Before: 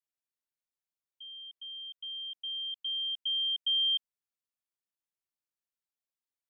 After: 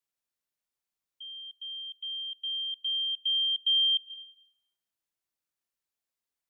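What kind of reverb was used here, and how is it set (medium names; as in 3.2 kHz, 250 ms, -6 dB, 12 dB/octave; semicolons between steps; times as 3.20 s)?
algorithmic reverb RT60 0.78 s, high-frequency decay 0.95×, pre-delay 85 ms, DRR 15.5 dB; trim +3.5 dB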